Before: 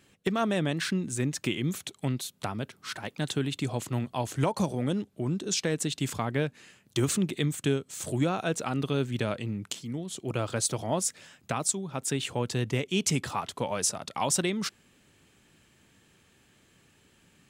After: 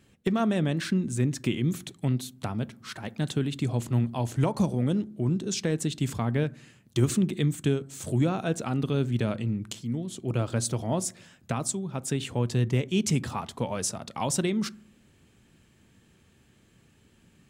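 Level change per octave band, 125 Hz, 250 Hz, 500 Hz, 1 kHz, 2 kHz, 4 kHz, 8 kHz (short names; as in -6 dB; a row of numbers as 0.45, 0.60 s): +4.5, +3.0, +0.5, -1.5, -2.5, -3.0, -3.0 dB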